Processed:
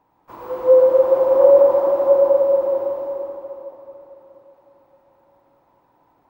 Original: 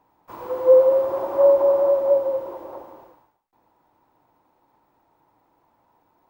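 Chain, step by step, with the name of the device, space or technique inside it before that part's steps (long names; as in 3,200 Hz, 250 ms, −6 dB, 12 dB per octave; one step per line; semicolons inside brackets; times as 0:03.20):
swimming-pool hall (convolution reverb RT60 3.7 s, pre-delay 87 ms, DRR −1.5 dB; high-shelf EQ 4,900 Hz −5 dB)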